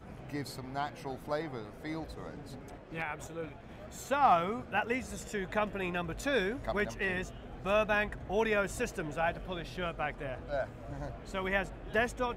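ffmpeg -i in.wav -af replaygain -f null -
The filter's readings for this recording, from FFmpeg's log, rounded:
track_gain = +13.1 dB
track_peak = 0.137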